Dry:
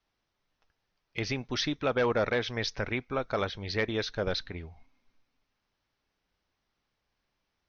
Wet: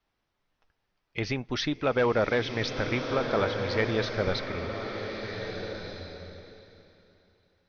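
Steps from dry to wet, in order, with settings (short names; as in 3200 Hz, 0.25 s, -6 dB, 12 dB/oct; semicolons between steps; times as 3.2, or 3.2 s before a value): high shelf 5300 Hz -9.5 dB; bloom reverb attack 1.54 s, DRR 4.5 dB; gain +2.5 dB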